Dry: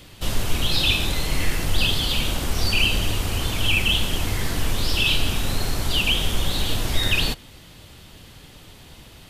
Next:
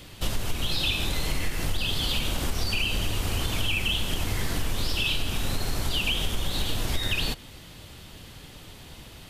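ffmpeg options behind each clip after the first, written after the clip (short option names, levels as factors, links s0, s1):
-af "acompressor=threshold=0.0794:ratio=6"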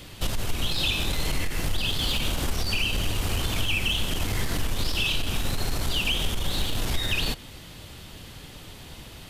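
-af "aeval=exprs='(tanh(8.91*val(0)+0.2)-tanh(0.2))/8.91':c=same,volume=1.33"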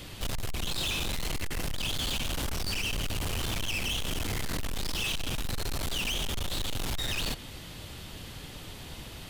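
-af "volume=28.2,asoftclip=hard,volume=0.0355"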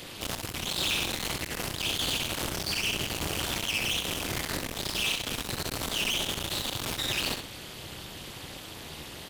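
-filter_complex "[0:a]highpass=f=180:p=1,tremolo=f=230:d=0.947,asplit=2[s0][s1];[s1]aecho=0:1:65|131:0.473|0.119[s2];[s0][s2]amix=inputs=2:normalize=0,volume=2.11"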